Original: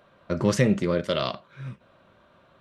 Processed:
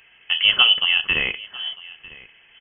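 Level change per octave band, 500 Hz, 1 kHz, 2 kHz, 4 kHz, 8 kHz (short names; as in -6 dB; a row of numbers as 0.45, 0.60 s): -14.5 dB, +1.5 dB, +15.5 dB, +21.0 dB, under -40 dB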